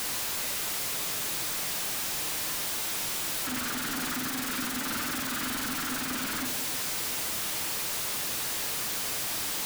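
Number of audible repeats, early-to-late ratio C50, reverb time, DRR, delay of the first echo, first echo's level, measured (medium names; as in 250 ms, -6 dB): no echo, 10.0 dB, 1.0 s, 6.0 dB, no echo, no echo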